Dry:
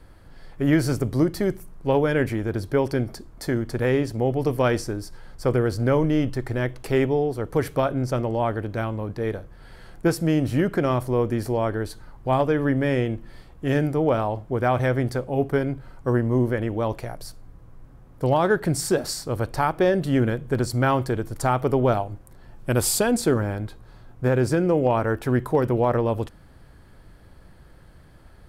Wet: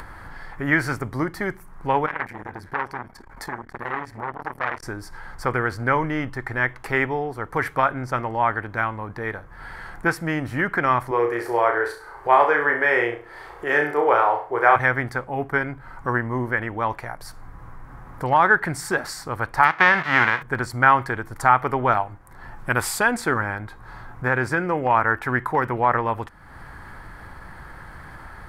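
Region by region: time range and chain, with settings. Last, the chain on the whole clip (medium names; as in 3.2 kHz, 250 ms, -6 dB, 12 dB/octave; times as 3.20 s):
2.06–4.83 s: flange 1.7 Hz, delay 2.9 ms, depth 2.4 ms, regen +84% + feedback echo behind a band-pass 94 ms, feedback 80%, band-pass 1.4 kHz, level -23.5 dB + transformer saturation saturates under 1.3 kHz
11.11–14.76 s: resonant low shelf 290 Hz -10.5 dB, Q 3 + flutter echo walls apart 5.8 m, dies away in 0.41 s
19.63–20.41 s: formants flattened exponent 0.3 + high-pass 80 Hz + distance through air 250 m
whole clip: high-order bell 1.3 kHz +12 dB; upward compressor, threshold -22 dBFS; dynamic bell 2.1 kHz, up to +6 dB, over -30 dBFS, Q 0.79; trim -5.5 dB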